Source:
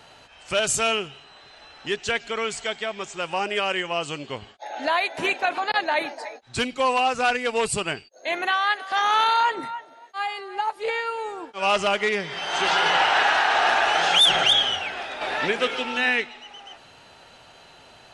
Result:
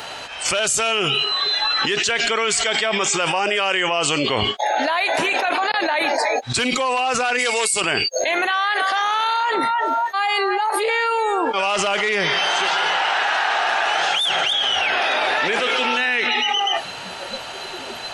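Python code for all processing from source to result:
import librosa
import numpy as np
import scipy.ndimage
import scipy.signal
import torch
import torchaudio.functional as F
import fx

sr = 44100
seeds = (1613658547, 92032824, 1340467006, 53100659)

y = fx.bass_treble(x, sr, bass_db=-9, treble_db=13, at=(7.38, 7.8), fade=0.02)
y = fx.dmg_tone(y, sr, hz=2200.0, level_db=-36.0, at=(7.38, 7.8), fade=0.02)
y = fx.noise_reduce_blind(y, sr, reduce_db=15)
y = fx.low_shelf(y, sr, hz=280.0, db=-10.5)
y = fx.env_flatten(y, sr, amount_pct=100)
y = y * librosa.db_to_amplitude(-7.0)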